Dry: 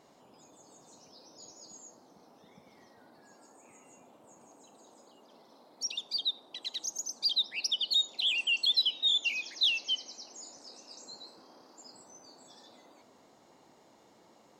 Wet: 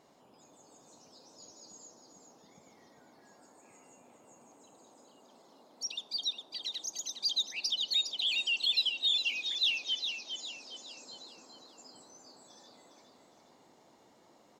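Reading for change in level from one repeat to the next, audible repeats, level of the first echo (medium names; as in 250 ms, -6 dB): -7.5 dB, 4, -7.0 dB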